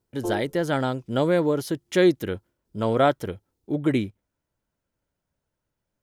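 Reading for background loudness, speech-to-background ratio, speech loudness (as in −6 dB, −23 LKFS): −33.0 LKFS, 8.5 dB, −24.5 LKFS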